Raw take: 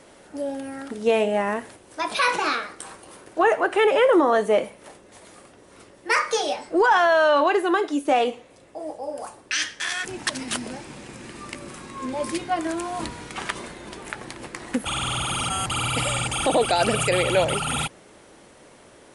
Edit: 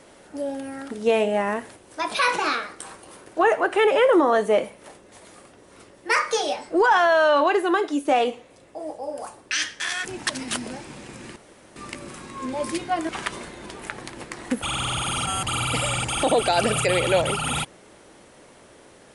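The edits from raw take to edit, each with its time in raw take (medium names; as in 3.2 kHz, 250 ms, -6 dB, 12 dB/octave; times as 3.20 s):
11.36 s: insert room tone 0.40 s
12.69–13.32 s: delete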